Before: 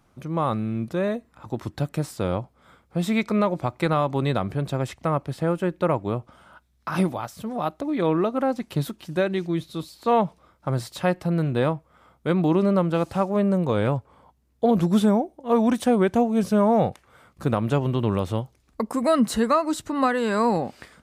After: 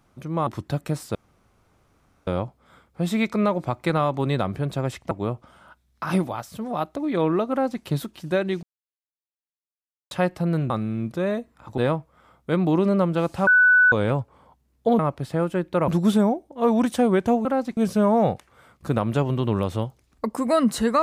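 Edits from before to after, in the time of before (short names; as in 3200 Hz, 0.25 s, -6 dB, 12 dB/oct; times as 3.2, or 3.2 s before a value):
0.47–1.55 move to 11.55
2.23 insert room tone 1.12 s
5.07–5.96 move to 14.76
8.36–8.68 copy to 16.33
9.48–10.96 mute
13.24–13.69 bleep 1490 Hz -12 dBFS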